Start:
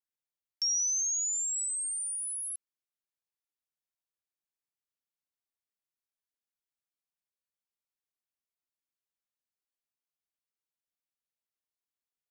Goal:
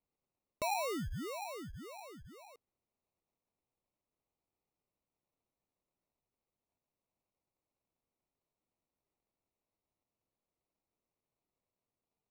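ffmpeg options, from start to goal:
-af "lowpass=2.4k,acrusher=samples=27:mix=1:aa=0.000001,volume=10dB"

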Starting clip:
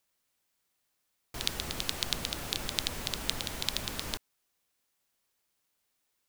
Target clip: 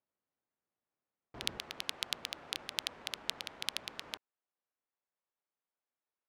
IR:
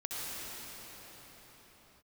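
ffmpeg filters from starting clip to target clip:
-af "asetnsamples=n=441:p=0,asendcmd='1.58 highpass f 800',highpass=f=150:p=1,adynamicsmooth=sensitivity=2:basefreq=1.3k,volume=-3.5dB"

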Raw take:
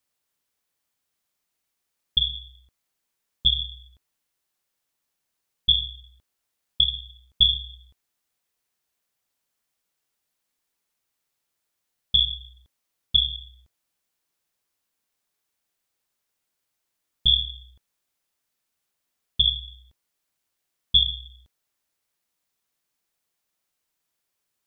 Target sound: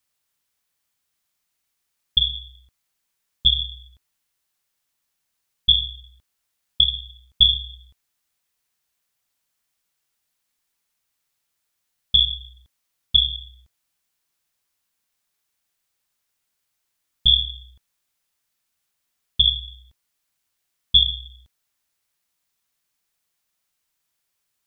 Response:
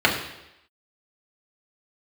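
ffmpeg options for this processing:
-af "equalizer=f=410:w=0.6:g=-5.5,volume=3.5dB"

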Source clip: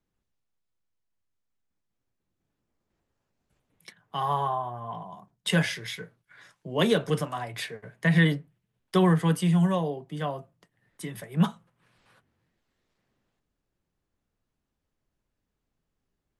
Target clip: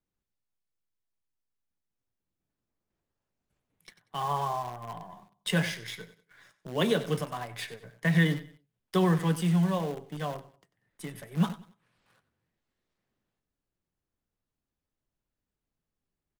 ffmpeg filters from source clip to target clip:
-filter_complex "[0:a]aecho=1:1:94|188|282:0.2|0.0619|0.0192,asplit=2[a][b];[b]acrusher=bits=6:dc=4:mix=0:aa=0.000001,volume=-5.5dB[c];[a][c]amix=inputs=2:normalize=0,volume=-7dB"

